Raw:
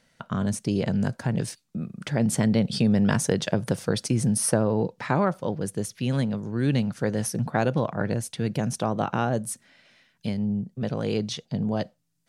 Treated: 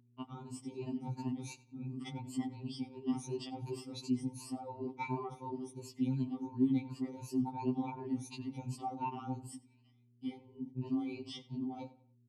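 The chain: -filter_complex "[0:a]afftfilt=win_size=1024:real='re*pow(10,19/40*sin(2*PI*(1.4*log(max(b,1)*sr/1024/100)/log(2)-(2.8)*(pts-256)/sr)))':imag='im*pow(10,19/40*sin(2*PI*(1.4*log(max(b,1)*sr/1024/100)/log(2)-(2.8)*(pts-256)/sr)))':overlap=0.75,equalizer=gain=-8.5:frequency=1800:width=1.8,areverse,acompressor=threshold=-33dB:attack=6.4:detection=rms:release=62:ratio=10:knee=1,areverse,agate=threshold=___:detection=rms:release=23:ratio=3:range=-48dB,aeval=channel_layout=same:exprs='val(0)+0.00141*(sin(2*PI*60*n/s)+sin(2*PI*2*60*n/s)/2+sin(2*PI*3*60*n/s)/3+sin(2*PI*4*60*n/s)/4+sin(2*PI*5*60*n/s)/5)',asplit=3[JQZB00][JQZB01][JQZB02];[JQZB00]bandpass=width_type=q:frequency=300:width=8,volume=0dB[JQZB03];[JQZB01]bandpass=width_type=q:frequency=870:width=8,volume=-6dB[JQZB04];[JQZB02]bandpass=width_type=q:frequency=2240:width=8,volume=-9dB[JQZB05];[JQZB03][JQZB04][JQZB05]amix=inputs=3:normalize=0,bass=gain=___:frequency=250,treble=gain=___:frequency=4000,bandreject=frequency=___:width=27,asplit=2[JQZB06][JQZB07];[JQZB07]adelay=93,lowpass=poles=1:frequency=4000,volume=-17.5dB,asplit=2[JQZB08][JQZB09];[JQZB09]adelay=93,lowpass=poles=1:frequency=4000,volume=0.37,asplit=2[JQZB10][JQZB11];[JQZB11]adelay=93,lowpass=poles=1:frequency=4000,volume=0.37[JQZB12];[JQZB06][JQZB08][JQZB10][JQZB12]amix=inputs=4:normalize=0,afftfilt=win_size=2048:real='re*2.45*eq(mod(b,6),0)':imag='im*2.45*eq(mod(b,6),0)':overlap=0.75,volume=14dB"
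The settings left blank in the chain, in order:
-52dB, 3, 7, 2200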